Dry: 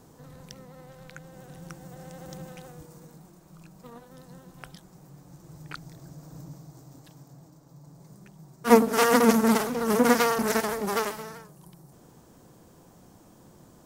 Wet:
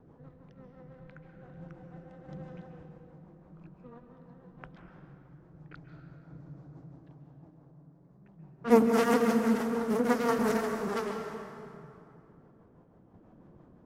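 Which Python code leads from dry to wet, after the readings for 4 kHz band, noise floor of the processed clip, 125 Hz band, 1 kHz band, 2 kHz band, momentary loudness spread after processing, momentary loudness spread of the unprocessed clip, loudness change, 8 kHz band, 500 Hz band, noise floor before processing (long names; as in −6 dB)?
−10.5 dB, −59 dBFS, −3.5 dB, −7.0 dB, −7.5 dB, 22 LU, 20 LU, −5.5 dB, −13.0 dB, −4.0 dB, −55 dBFS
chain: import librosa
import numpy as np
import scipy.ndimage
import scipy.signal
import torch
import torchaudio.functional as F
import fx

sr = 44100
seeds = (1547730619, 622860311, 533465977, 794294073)

y = fx.rotary(x, sr, hz=6.0)
y = fx.high_shelf(y, sr, hz=2900.0, db=-8.5)
y = fx.env_lowpass(y, sr, base_hz=1800.0, full_db=-25.0)
y = fx.tremolo_random(y, sr, seeds[0], hz=3.5, depth_pct=55)
y = fx.rev_plate(y, sr, seeds[1], rt60_s=2.6, hf_ratio=0.65, predelay_ms=120, drr_db=4.5)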